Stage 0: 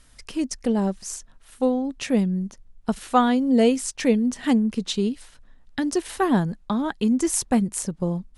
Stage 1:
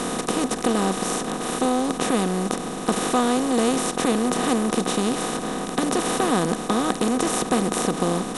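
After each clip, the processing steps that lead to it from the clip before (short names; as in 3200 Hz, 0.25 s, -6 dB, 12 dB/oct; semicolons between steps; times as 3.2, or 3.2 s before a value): per-bin compression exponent 0.2; gain -7.5 dB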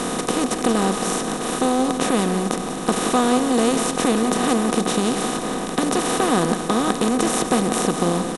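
echo 0.177 s -10 dB; gain +2 dB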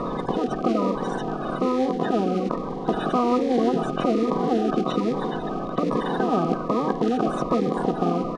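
bin magnitudes rounded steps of 30 dB; air absorption 240 m; cascading phaser falling 1.2 Hz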